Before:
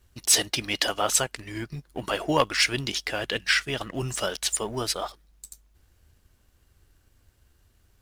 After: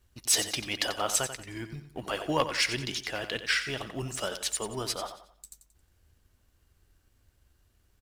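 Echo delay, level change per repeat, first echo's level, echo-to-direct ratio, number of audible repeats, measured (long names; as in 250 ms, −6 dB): 90 ms, −9.0 dB, −10.5 dB, −10.0 dB, 3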